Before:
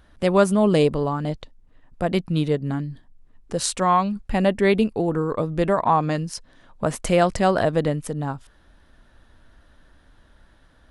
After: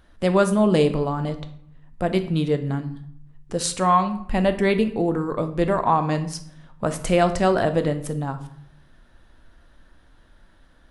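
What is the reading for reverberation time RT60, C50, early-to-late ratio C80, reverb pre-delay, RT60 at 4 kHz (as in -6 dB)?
0.65 s, 12.5 dB, 16.0 dB, 3 ms, 0.45 s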